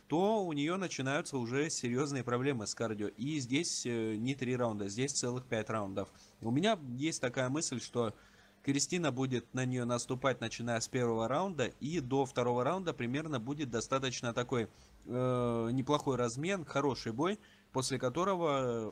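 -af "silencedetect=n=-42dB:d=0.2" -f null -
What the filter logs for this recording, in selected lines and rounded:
silence_start: 6.04
silence_end: 6.43 | silence_duration: 0.38
silence_start: 8.11
silence_end: 8.65 | silence_duration: 0.54
silence_start: 14.66
silence_end: 15.08 | silence_duration: 0.42
silence_start: 17.35
silence_end: 17.74 | silence_duration: 0.39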